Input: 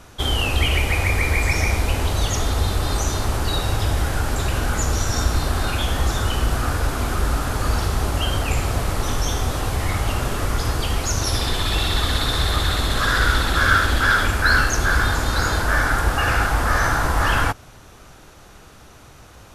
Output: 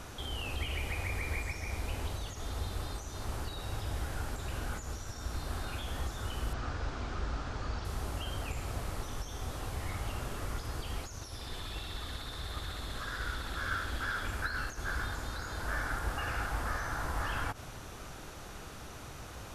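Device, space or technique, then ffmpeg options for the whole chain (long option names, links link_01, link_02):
de-esser from a sidechain: -filter_complex "[0:a]asplit=2[link_01][link_02];[link_02]highpass=frequency=4200:width=0.5412,highpass=frequency=4200:width=1.3066,apad=whole_len=861743[link_03];[link_01][link_03]sidechaincompress=threshold=-51dB:ratio=6:attack=3.1:release=62,asettb=1/sr,asplit=3[link_04][link_05][link_06];[link_04]atrim=end=6.534[link_07];[link_05]atrim=start=6.53:end=7.85,asetpts=PTS-STARTPTS,afade=type=in:duration=0.004:curve=qsin,afade=type=out:start_time=1.316:duration=0.004:curve=qsin,lowpass=frequency=6100:width=0.5412,lowpass=frequency=6100:width=1.3066[link_08];[link_06]atrim=start=7.846[link_09];[link_07][link_08]acrossfade=duration=0.004:curve1=hsin:curve2=qsin[link_10];[link_10][link_09]acrossfade=duration=0.004:curve1=qsin:curve2=hsin"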